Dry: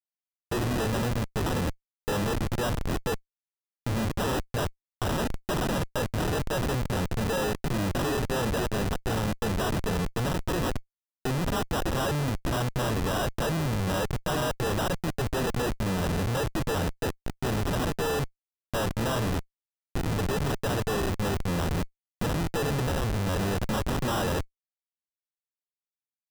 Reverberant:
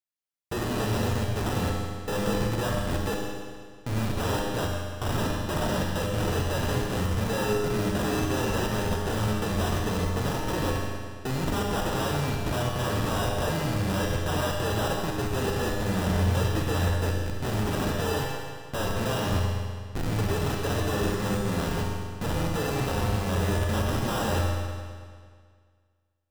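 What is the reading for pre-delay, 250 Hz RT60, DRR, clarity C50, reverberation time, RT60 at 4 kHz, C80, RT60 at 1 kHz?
31 ms, 1.9 s, −1.0 dB, 0.0 dB, 1.9 s, 1.8 s, 2.0 dB, 1.9 s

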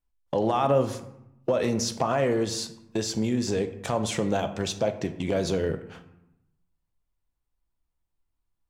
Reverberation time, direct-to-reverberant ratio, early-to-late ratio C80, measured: 0.85 s, 7.0 dB, 14.0 dB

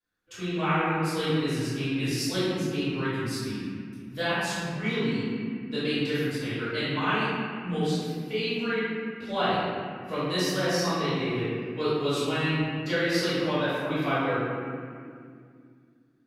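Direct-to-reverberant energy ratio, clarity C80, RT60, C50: −15.5 dB, −1.5 dB, 2.2 s, −4.0 dB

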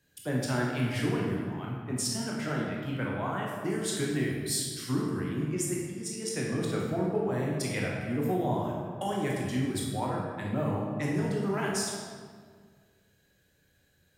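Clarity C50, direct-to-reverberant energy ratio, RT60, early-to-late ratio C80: 0.0 dB, −3.5 dB, 1.8 s, 2.0 dB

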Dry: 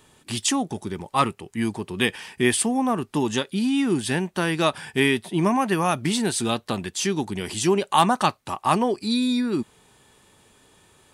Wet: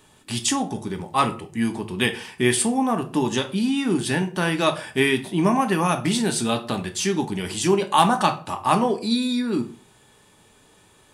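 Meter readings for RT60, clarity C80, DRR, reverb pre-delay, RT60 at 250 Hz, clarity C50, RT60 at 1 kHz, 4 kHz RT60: 0.40 s, 18.5 dB, 5.5 dB, 3 ms, 0.45 s, 13.5 dB, 0.40 s, 0.30 s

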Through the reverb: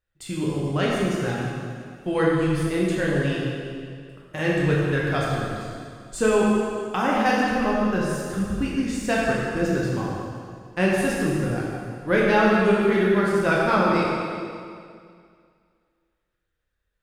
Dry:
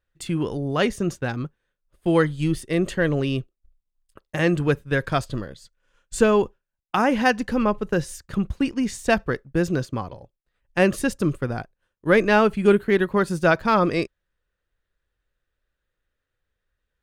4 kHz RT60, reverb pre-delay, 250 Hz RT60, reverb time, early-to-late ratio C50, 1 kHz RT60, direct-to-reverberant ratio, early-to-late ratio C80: 2.1 s, 5 ms, 2.2 s, 2.2 s, −1.5 dB, 2.2 s, −5.0 dB, 0.0 dB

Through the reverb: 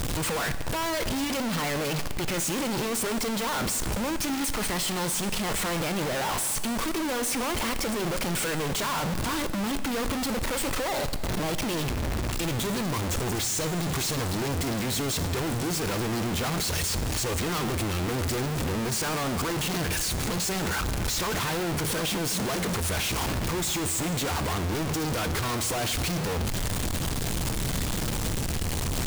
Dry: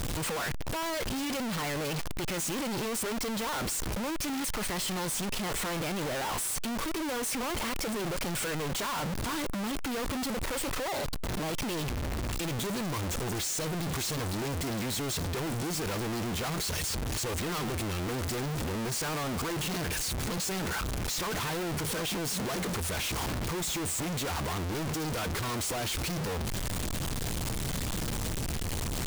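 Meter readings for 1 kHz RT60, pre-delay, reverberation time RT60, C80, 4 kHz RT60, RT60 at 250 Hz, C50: 2.0 s, 18 ms, 2.0 s, 13.0 dB, 1.9 s, 2.0 s, 12.0 dB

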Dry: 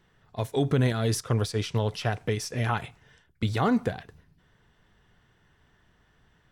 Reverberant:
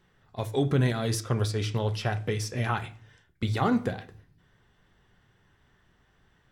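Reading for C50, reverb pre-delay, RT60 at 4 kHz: 17.5 dB, 3 ms, 0.50 s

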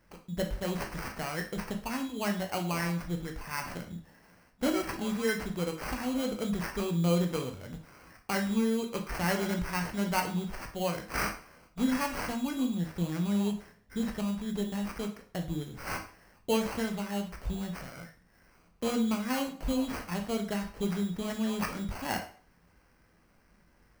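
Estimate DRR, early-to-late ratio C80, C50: 3.0 dB, 14.5 dB, 9.5 dB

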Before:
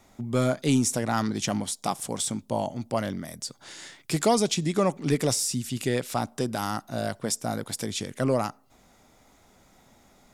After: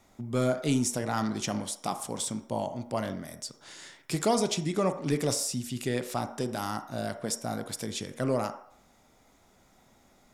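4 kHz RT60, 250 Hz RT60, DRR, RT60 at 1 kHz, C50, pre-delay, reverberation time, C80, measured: 0.55 s, 0.45 s, 9.0 dB, 0.65 s, 11.5 dB, 28 ms, 0.60 s, 14.0 dB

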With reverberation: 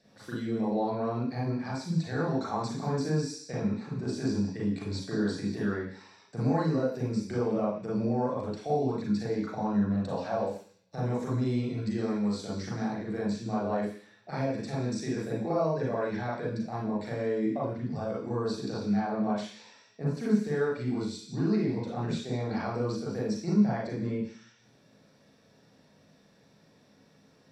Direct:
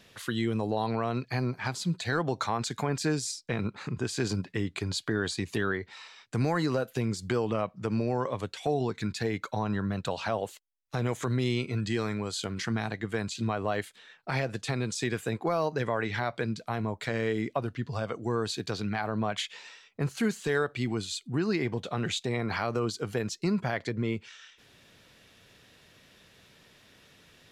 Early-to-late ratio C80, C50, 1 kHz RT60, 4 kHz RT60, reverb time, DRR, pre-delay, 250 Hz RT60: 7.0 dB, 0.5 dB, 0.50 s, 0.85 s, 0.50 s, −7.0 dB, 33 ms, 0.50 s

